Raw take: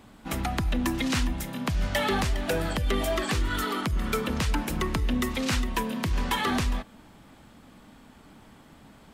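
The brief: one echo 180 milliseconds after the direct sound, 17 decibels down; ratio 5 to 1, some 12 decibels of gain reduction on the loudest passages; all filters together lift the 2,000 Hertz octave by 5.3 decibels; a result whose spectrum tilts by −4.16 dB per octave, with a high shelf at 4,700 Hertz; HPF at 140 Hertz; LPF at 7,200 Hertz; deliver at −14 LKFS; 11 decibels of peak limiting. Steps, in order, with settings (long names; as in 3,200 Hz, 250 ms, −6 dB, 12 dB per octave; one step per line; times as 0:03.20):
high-pass filter 140 Hz
low-pass filter 7,200 Hz
parametric band 2,000 Hz +6 dB
high-shelf EQ 4,700 Hz +3 dB
downward compressor 5 to 1, threshold −36 dBFS
brickwall limiter −31.5 dBFS
single-tap delay 180 ms −17 dB
level +27.5 dB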